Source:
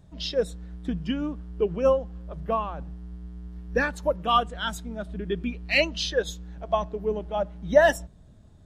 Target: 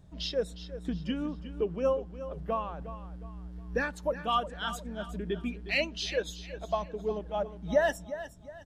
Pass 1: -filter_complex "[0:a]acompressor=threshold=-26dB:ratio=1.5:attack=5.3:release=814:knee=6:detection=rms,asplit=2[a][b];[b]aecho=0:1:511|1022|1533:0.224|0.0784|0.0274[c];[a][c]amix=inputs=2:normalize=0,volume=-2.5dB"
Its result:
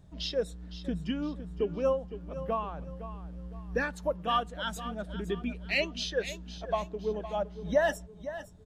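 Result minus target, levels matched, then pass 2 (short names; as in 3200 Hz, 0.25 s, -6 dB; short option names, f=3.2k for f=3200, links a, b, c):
echo 0.151 s late
-filter_complex "[0:a]acompressor=threshold=-26dB:ratio=1.5:attack=5.3:release=814:knee=6:detection=rms,asplit=2[a][b];[b]aecho=0:1:360|720|1080:0.224|0.0784|0.0274[c];[a][c]amix=inputs=2:normalize=0,volume=-2.5dB"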